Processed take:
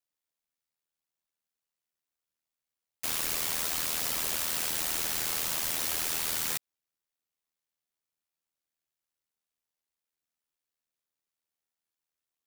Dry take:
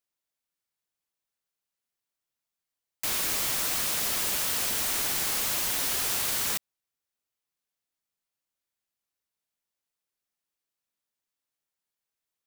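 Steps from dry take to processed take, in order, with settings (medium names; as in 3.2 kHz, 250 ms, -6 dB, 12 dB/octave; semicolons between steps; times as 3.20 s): ring modulator 40 Hz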